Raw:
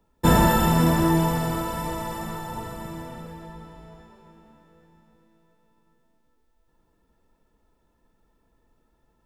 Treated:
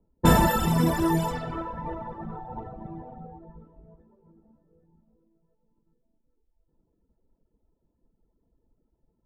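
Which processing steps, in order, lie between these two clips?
low-pass that shuts in the quiet parts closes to 480 Hz, open at −16.5 dBFS
0:02.32–0:03.38: steady tone 760 Hz −40 dBFS
reverb reduction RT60 1.4 s

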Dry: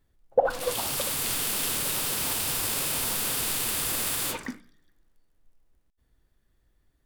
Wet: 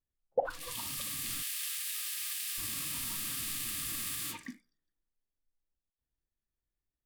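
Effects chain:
0:01.42–0:02.58: high-pass filter 1,200 Hz 24 dB per octave
noise reduction from a noise print of the clip's start 14 dB
level −8.5 dB

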